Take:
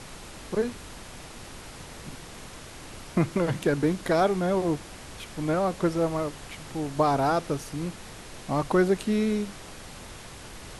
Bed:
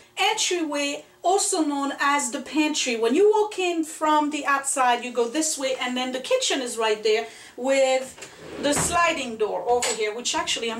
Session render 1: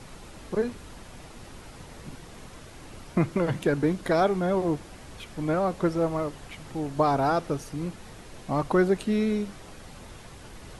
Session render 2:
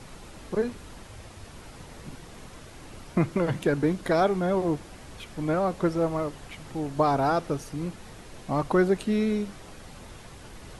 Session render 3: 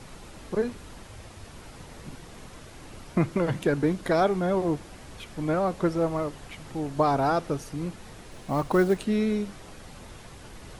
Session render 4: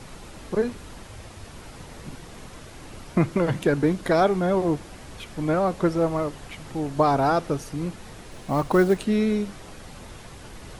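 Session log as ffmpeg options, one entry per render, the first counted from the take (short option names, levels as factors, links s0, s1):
-af "afftdn=nr=6:nf=-44"
-filter_complex "[0:a]asettb=1/sr,asplit=3[s0][s1][s2];[s0]atrim=end=1.074[s3];[s1]atrim=start=1.07:end=1.55,asetpts=PTS-STARTPTS,afade=t=in:d=0.004:c=qsin,afade=t=out:st=0.476:d=0.004:c=qsin,afreqshift=-120[s4];[s2]atrim=start=1.546[s5];[s3][s4]acrossfade=d=0.004:c1=hsin:c2=qsin[s6];[s6][s5]acrossfade=d=0.004:c1=qsin:c2=hsin"
-filter_complex "[0:a]asettb=1/sr,asplit=3[s0][s1][s2];[s0]atrim=end=8.314[s3];[s1]atrim=start=8.31:end=9.05,asetpts=PTS-STARTPTS,afade=t=in:d=0.004:c=qsin,afade=t=out:st=0.736:d=0.004:c=qsin,acrusher=bits=7:mode=log:mix=0:aa=0.000001[s4];[s2]atrim=start=9.046[s5];[s3][s4]acrossfade=d=0.004:c1=hsin:c2=qsin[s6];[s6][s5]acrossfade=d=0.004:c1=qsin:c2=hsin"
-af "volume=1.41"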